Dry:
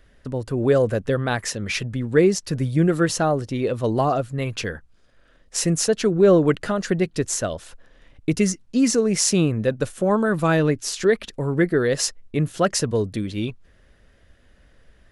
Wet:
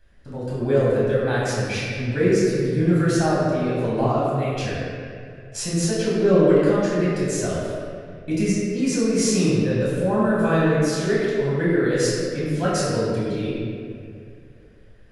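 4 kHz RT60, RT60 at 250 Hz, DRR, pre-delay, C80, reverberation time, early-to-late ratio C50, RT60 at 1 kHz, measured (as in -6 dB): 1.5 s, 2.4 s, -8.0 dB, 5 ms, -1.0 dB, 2.4 s, -2.5 dB, 2.0 s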